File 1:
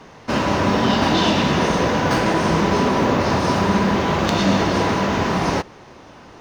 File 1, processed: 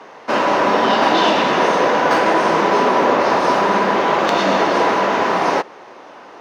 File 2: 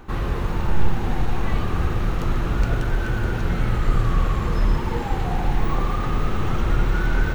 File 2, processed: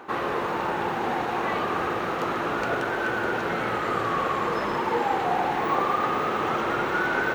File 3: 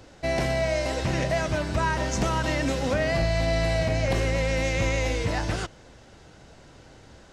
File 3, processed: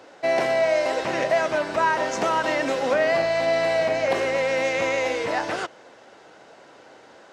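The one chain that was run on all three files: HPF 450 Hz 12 dB/oct; high shelf 3000 Hz -11.5 dB; gain +7.5 dB

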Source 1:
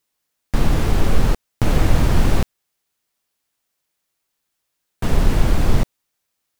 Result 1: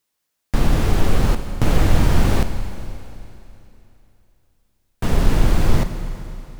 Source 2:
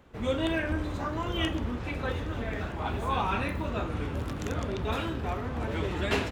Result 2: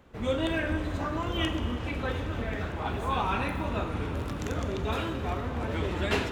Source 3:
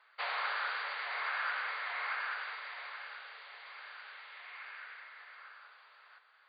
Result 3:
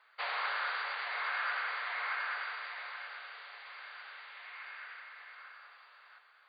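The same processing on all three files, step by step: Schroeder reverb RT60 3 s, combs from 32 ms, DRR 8.5 dB

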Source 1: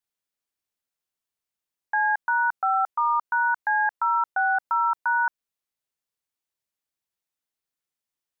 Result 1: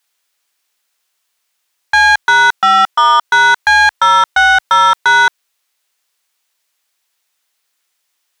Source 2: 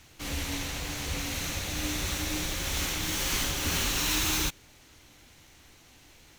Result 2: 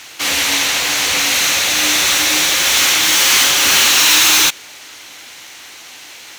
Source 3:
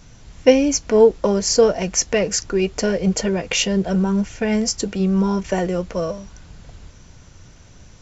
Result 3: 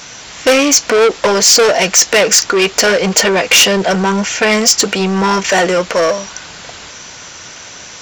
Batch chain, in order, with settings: overdrive pedal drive 27 dB, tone 4100 Hz, clips at -1 dBFS; tilt +2 dB/oct

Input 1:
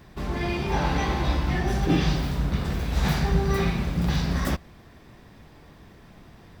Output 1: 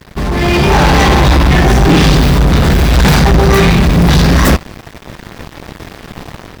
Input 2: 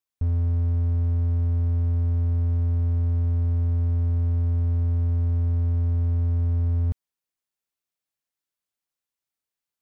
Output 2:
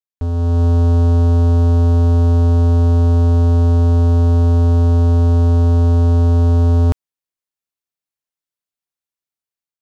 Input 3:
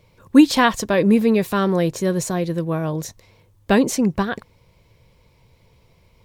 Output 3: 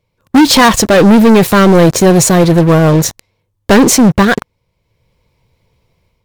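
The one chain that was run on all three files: sample leveller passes 5; AGC gain up to 8 dB; gain -1 dB

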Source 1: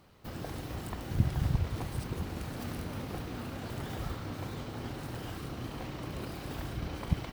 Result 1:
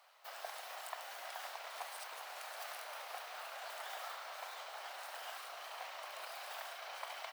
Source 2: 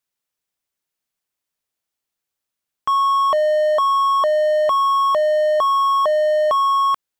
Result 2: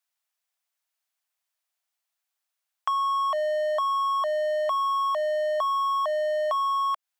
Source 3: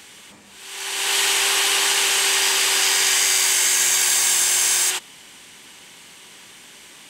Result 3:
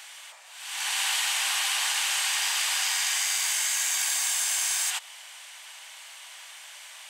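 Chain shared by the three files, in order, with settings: elliptic high-pass 640 Hz, stop band 70 dB; compressor 6:1, threshold -24 dBFS

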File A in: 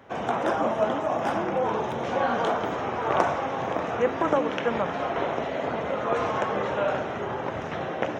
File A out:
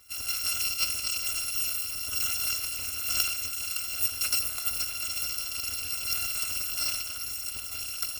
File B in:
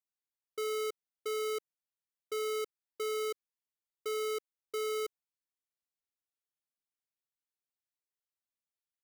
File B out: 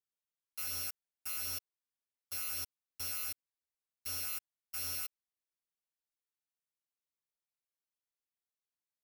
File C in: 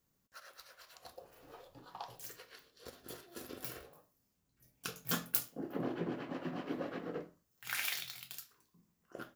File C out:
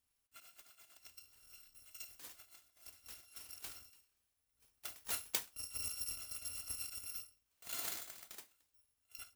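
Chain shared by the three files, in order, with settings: FFT order left unsorted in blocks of 256 samples; gain -4.5 dB

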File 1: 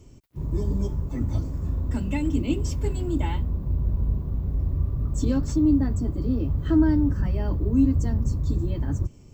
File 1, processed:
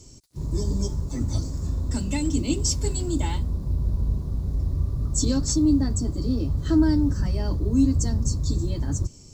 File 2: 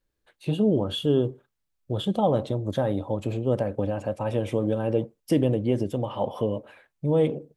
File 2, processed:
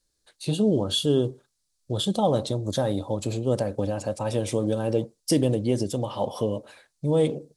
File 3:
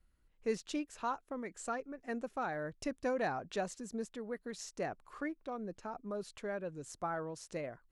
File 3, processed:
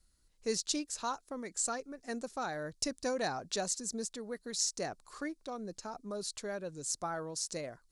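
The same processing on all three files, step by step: band shelf 6400 Hz +15 dB

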